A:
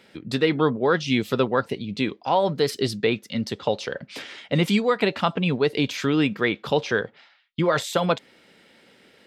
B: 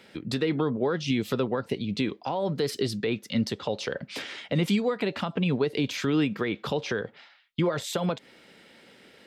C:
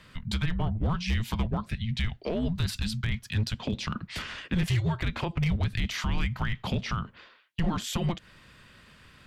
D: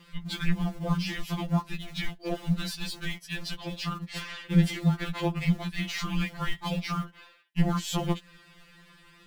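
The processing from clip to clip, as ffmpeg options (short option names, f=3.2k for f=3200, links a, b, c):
-filter_complex "[0:a]alimiter=limit=-15.5dB:level=0:latency=1:release=149,acrossover=split=480[a][b];[b]acompressor=threshold=-31dB:ratio=6[c];[a][c]amix=inputs=2:normalize=0,volume=1dB"
-af "afreqshift=-330,asoftclip=type=hard:threshold=-21.5dB"
-filter_complex "[0:a]asplit=2[a][b];[b]acrusher=bits=6:dc=4:mix=0:aa=0.000001,volume=-10dB[c];[a][c]amix=inputs=2:normalize=0,afftfilt=real='re*2.83*eq(mod(b,8),0)':imag='im*2.83*eq(mod(b,8),0)':win_size=2048:overlap=0.75"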